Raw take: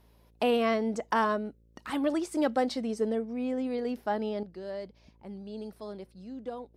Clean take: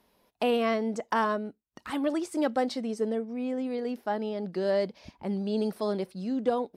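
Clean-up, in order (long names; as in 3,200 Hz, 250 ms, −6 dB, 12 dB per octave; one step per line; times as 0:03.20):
hum removal 56.2 Hz, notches 10
level correction +11.5 dB, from 0:04.43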